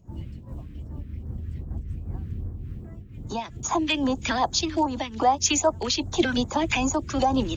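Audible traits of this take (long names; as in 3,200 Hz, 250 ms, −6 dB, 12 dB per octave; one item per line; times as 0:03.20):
phaser sweep stages 2, 2.5 Hz, lowest notch 740–2,600 Hz
amplitude modulation by smooth noise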